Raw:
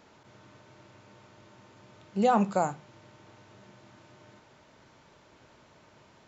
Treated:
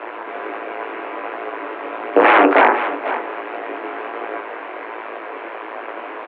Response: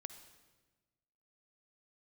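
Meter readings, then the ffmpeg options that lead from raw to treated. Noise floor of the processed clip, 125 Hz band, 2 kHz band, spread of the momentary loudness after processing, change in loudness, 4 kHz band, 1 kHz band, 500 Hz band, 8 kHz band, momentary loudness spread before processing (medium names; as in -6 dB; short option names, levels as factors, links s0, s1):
-32 dBFS, under -10 dB, +26.0 dB, 18 LU, +8.0 dB, +17.5 dB, +15.0 dB, +15.0 dB, no reading, 10 LU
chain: -filter_complex "[0:a]asplit=2[s0][s1];[s1]acompressor=threshold=0.0112:ratio=6,volume=1.12[s2];[s0][s2]amix=inputs=2:normalize=0,tremolo=f=110:d=0.889,flanger=delay=3.8:depth=8.6:regen=-81:speed=0.59:shape=sinusoidal,aeval=exprs='0.168*(cos(1*acos(clip(val(0)/0.168,-1,1)))-cos(1*PI/2))+0.0596*(cos(6*acos(clip(val(0)/0.168,-1,1)))-cos(6*PI/2))':c=same,flanger=delay=18:depth=3.5:speed=1.4,aeval=exprs='0.0668*(abs(mod(val(0)/0.0668+3,4)-2)-1)':c=same,aecho=1:1:495:0.106,highpass=f=240:t=q:w=0.5412,highpass=f=240:t=q:w=1.307,lowpass=f=2500:t=q:w=0.5176,lowpass=f=2500:t=q:w=0.7071,lowpass=f=2500:t=q:w=1.932,afreqshift=93,alimiter=level_in=53.1:limit=0.891:release=50:level=0:latency=1,volume=0.891"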